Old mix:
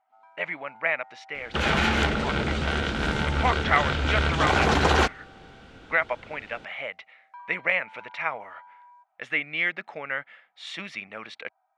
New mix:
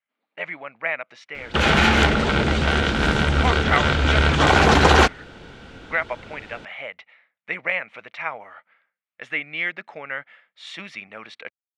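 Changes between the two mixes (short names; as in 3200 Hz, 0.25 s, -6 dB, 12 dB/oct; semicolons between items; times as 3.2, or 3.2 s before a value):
first sound: muted; second sound +6.5 dB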